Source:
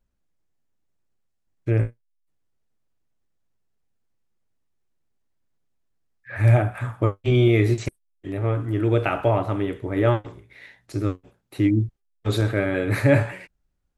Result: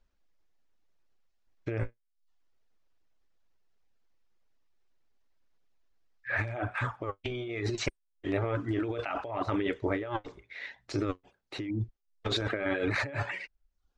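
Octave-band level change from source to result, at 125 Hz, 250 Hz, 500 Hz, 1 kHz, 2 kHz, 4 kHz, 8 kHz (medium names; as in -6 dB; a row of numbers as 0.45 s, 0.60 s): -15.5 dB, -10.5 dB, -10.5 dB, -6.5 dB, -4.0 dB, -1.5 dB, no reading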